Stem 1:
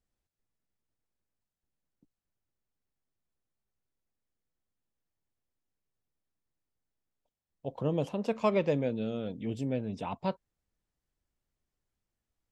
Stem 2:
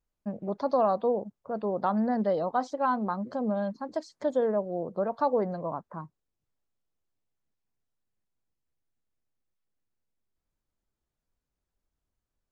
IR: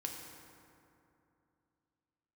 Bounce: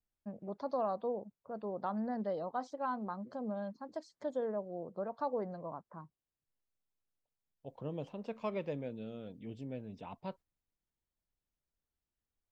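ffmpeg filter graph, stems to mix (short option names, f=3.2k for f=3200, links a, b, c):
-filter_complex "[0:a]lowpass=5k,volume=-10.5dB,asplit=2[a][b];[1:a]volume=1dB[c];[b]apad=whole_len=551830[d];[c][d]sidechaingate=range=-11dB:threshold=-53dB:ratio=16:detection=peak[e];[a][e]amix=inputs=2:normalize=0"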